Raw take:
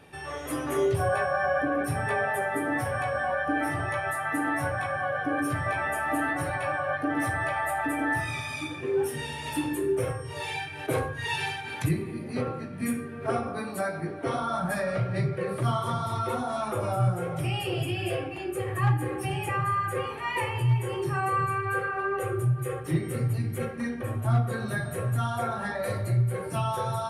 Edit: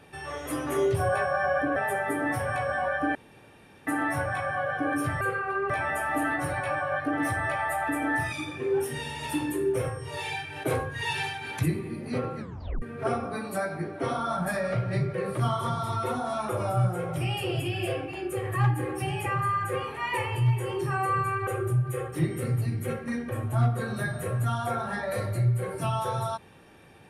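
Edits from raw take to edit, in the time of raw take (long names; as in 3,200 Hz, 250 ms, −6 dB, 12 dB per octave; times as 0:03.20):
0:01.76–0:02.22: remove
0:03.61–0:04.33: fill with room tone
0:08.29–0:08.55: remove
0:12.62: tape stop 0.43 s
0:21.70–0:22.19: move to 0:05.67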